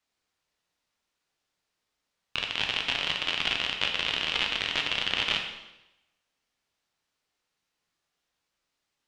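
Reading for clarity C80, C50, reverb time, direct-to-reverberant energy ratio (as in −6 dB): 8.0 dB, 6.0 dB, 0.95 s, 2.0 dB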